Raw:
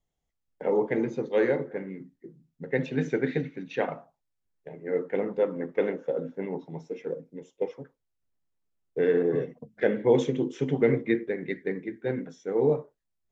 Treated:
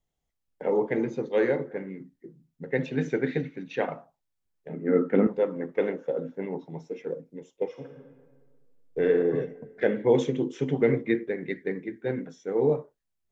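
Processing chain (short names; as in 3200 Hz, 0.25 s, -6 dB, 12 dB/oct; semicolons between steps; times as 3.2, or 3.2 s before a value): 4.69–5.27 small resonant body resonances 230/1300 Hz, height 16 dB, ringing for 30 ms; 7.68–9.04 reverb throw, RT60 1.6 s, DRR 2 dB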